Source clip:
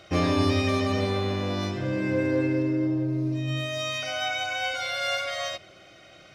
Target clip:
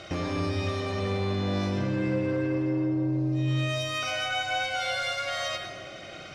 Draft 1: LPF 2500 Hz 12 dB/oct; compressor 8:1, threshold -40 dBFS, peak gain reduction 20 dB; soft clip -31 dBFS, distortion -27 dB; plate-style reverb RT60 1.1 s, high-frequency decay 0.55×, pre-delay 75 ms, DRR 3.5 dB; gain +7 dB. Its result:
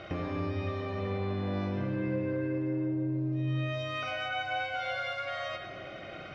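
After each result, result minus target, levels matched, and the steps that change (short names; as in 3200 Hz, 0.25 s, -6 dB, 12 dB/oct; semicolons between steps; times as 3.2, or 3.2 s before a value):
8000 Hz band -14.5 dB; compressor: peak gain reduction +5.5 dB
change: LPF 9900 Hz 12 dB/oct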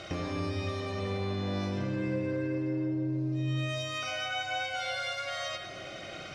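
compressor: peak gain reduction +5.5 dB
change: compressor 8:1, threshold -33.5 dBFS, peak gain reduction 14.5 dB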